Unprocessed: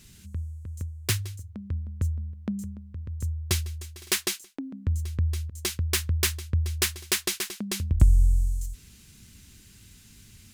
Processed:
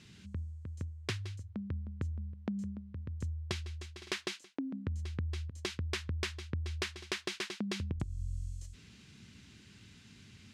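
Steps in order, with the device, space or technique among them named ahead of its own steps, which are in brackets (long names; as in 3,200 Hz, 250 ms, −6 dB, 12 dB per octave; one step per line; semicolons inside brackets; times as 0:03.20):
AM radio (band-pass filter 110–4,000 Hz; downward compressor 8 to 1, threshold −32 dBFS, peak gain reduction 14.5 dB; soft clipping −21 dBFS, distortion −24 dB)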